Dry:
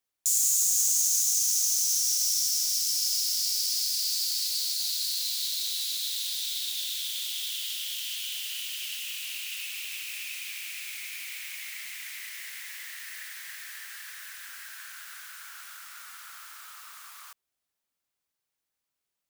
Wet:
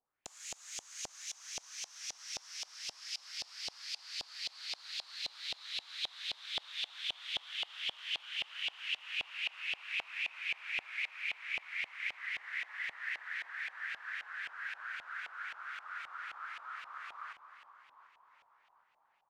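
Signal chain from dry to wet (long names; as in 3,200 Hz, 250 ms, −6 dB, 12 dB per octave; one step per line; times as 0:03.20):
echo with shifted repeats 372 ms, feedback 62%, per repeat −60 Hz, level −12 dB
0:11.09–0:12.18: frequency shifter +91 Hz
auto-filter low-pass saw up 3.8 Hz 740–2,800 Hz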